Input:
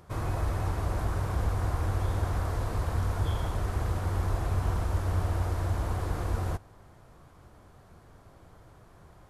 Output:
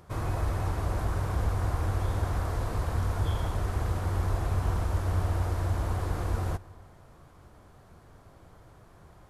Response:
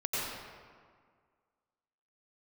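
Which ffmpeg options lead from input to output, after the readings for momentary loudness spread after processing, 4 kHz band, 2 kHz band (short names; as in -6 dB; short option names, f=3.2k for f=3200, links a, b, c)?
2 LU, +0.5 dB, +0.5 dB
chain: -filter_complex "[0:a]asplit=2[a][b];[1:a]atrim=start_sample=2205,asetrate=37044,aresample=44100[c];[b][c]afir=irnorm=-1:irlink=0,volume=-29dB[d];[a][d]amix=inputs=2:normalize=0"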